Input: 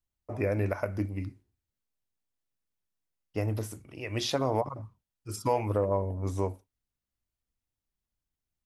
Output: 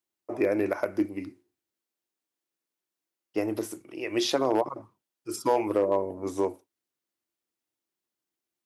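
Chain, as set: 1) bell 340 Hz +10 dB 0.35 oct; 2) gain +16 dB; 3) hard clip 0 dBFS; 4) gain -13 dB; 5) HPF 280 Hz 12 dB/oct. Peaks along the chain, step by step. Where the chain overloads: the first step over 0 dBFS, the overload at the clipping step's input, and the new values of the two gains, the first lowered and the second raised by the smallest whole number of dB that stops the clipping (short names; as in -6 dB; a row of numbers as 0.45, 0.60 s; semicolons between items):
-13.0, +3.0, 0.0, -13.0, -12.0 dBFS; step 2, 3.0 dB; step 2 +13 dB, step 4 -10 dB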